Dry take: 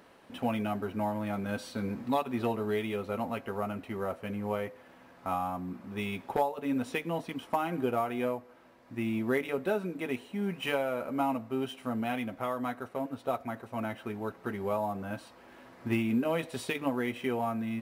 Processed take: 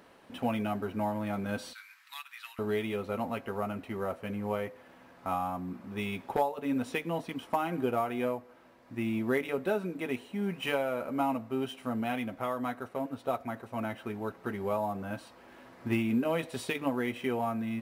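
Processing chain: 1.73–2.59 inverse Chebyshev high-pass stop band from 570 Hz, stop band 50 dB

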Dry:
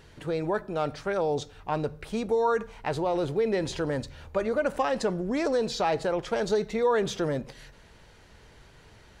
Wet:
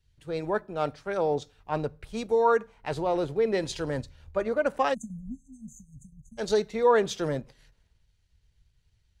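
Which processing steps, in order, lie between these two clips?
spectral delete 4.94–6.38, 270–6100 Hz; transient shaper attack -1 dB, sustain -6 dB; three-band expander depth 100%

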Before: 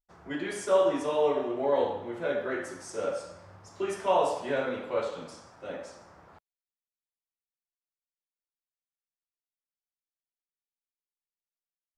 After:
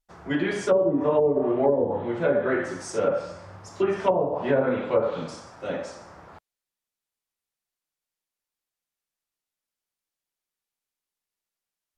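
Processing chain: treble ducked by the level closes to 410 Hz, closed at -22 dBFS; dynamic EQ 150 Hz, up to +6 dB, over -52 dBFS, Q 1.2; gain +7.5 dB

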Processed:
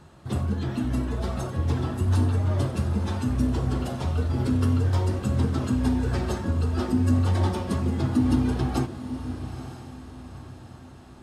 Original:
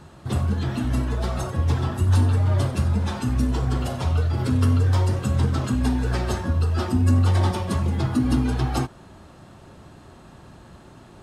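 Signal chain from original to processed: diffused feedback echo 0.923 s, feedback 45%, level -10 dB; dynamic EQ 300 Hz, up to +5 dB, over -32 dBFS, Q 0.79; gain -5 dB

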